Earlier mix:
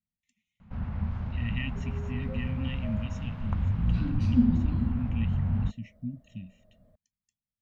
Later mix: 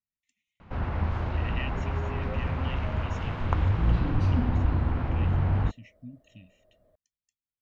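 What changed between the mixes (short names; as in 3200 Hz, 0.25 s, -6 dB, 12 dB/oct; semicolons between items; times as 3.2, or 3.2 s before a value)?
first sound +11.0 dB; master: add resonant low shelf 270 Hz -7 dB, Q 3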